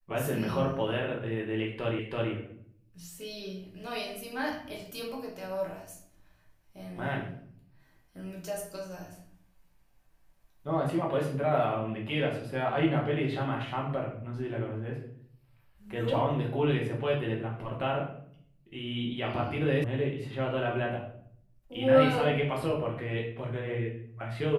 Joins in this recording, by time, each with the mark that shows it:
0:01.99: the same again, the last 0.33 s
0:19.84: cut off before it has died away

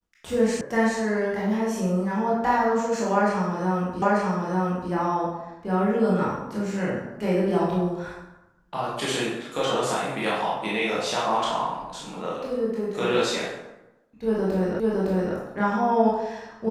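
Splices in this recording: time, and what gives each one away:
0:00.61: cut off before it has died away
0:04.02: the same again, the last 0.89 s
0:14.80: the same again, the last 0.56 s

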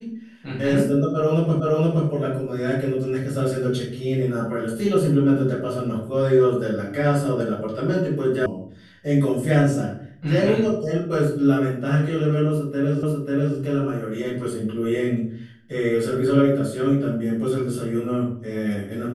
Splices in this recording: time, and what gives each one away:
0:01.60: the same again, the last 0.47 s
0:08.46: cut off before it has died away
0:13.03: the same again, the last 0.54 s

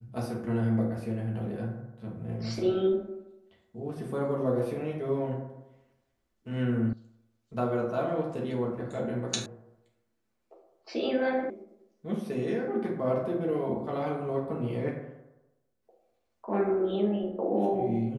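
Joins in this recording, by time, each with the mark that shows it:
0:06.93: cut off before it has died away
0:09.46: cut off before it has died away
0:11.50: cut off before it has died away

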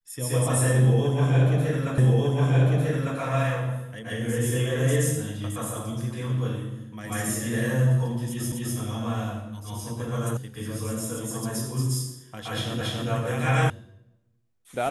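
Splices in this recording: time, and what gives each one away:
0:01.98: the same again, the last 1.2 s
0:08.52: the same again, the last 0.25 s
0:10.37: cut off before it has died away
0:12.81: the same again, the last 0.28 s
0:13.70: cut off before it has died away

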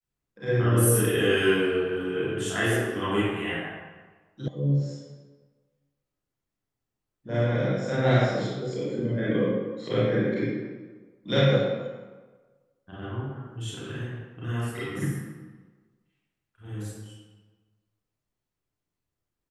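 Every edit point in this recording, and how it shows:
0:04.48: cut off before it has died away

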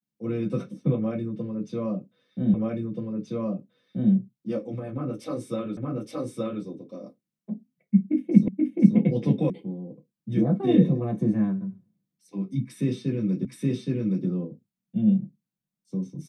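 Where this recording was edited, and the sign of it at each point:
0:02.54: the same again, the last 1.58 s
0:05.77: the same again, the last 0.87 s
0:08.48: the same again, the last 0.48 s
0:09.50: cut off before it has died away
0:13.45: the same again, the last 0.82 s

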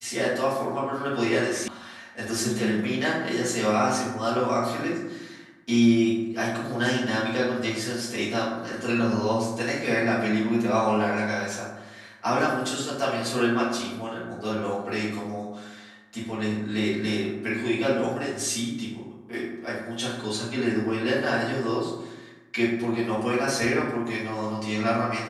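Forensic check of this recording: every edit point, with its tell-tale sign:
0:01.68: cut off before it has died away

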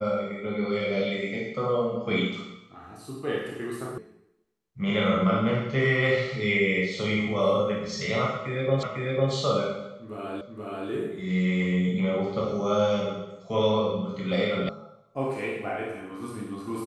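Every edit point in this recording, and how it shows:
0:03.98: cut off before it has died away
0:08.83: the same again, the last 0.5 s
0:10.41: the same again, the last 0.48 s
0:14.69: cut off before it has died away

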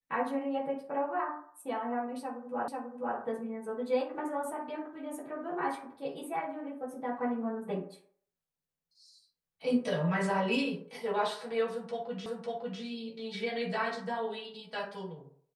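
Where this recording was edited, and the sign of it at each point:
0:02.68: the same again, the last 0.49 s
0:12.26: the same again, the last 0.55 s

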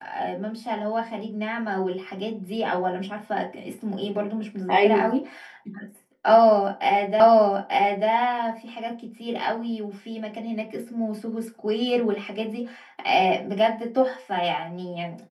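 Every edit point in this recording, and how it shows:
0:07.20: the same again, the last 0.89 s

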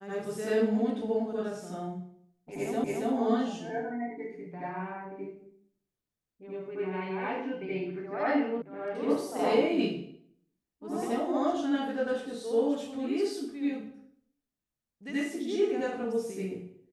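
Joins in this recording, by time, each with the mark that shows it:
0:02.84: the same again, the last 0.28 s
0:08.62: cut off before it has died away

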